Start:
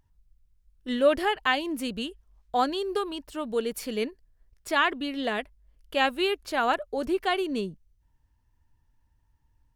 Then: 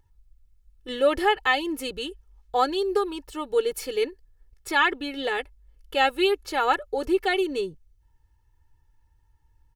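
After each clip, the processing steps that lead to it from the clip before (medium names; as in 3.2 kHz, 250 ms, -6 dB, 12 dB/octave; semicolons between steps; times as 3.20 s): comb 2.3 ms, depth 88%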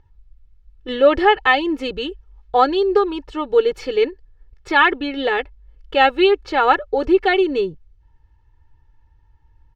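distance through air 190 m; trim +8.5 dB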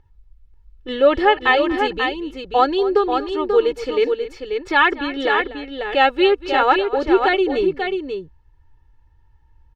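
multi-tap echo 238/538 ms -16/-6 dB; trim -1 dB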